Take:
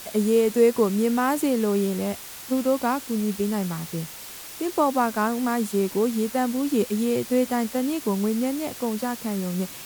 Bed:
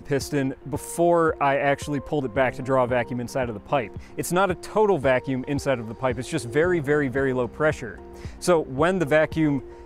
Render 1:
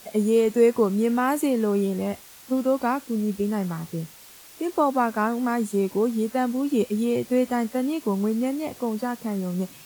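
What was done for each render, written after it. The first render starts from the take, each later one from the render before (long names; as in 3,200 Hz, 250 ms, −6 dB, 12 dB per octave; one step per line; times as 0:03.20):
noise reduction from a noise print 8 dB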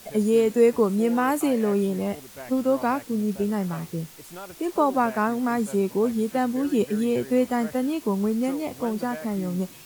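mix in bed −19 dB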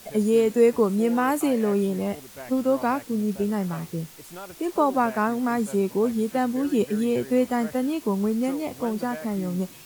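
no processing that can be heard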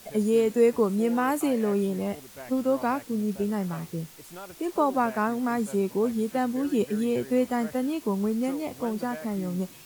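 level −2.5 dB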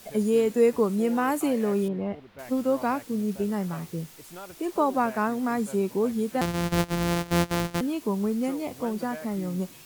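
0:01.88–0:02.39: high-frequency loss of the air 360 metres
0:06.41–0:07.81: samples sorted by size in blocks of 256 samples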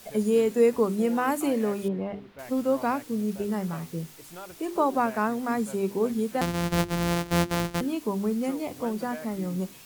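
mains-hum notches 50/100/150/200/250/300/350/400 Hz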